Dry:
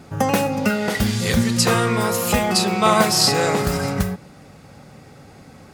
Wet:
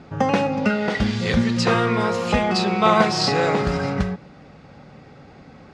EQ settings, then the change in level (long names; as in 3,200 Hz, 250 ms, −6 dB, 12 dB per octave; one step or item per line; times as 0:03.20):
low-pass filter 5,000 Hz 12 dB per octave
high-frequency loss of the air 68 metres
parametric band 100 Hz −4.5 dB 0.49 octaves
0.0 dB